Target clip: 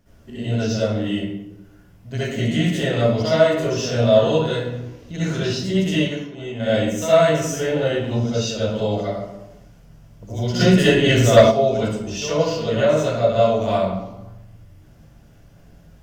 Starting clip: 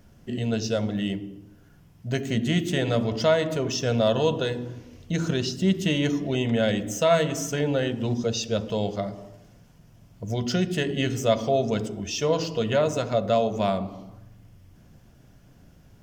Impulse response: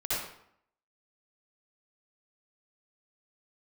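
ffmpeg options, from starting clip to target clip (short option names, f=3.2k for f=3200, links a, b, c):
-filter_complex "[0:a]asettb=1/sr,asplit=3[a][b][c];[a]atrim=end=5.984[d];[b]atrim=start=5.98:end=6.6,asetpts=PTS-STARTPTS,afade=t=in:d=0.004:c=qsin,afade=t=out:st=0.616:d=0.004:c=qsin,agate=range=-33dB:threshold=-16dB:ratio=3:detection=peak[e];[c]atrim=start=6.596[f];[d][e]acrossfade=d=0.004:c1=hsin:c2=qsin[g];[g][f]acrossfade=d=0.004:c1=qsin:c2=hsin[h];[1:a]atrim=start_sample=2205,asetrate=42336,aresample=44100[i];[h][i]afir=irnorm=-1:irlink=0,asplit=3[j][k][l];[j]afade=t=out:st=10.59:d=0.02[m];[k]aeval=exprs='1*sin(PI/2*1.58*val(0)/1)':c=same,afade=t=in:st=10.59:d=0.02,afade=t=out:st=11.5:d=0.02[n];[l]afade=t=in:st=11.5:d=0.02[o];[m][n][o]amix=inputs=3:normalize=0,volume=-3dB"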